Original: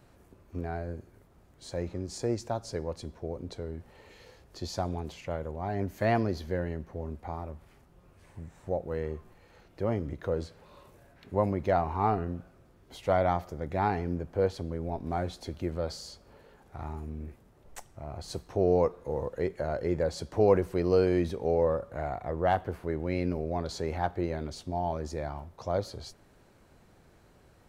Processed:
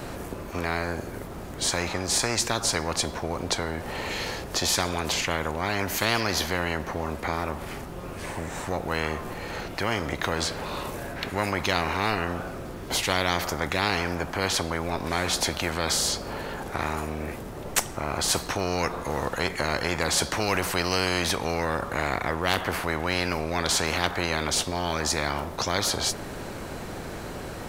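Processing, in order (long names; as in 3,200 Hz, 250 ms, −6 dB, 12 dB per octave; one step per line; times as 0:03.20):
every bin compressed towards the loudest bin 4 to 1
level +6 dB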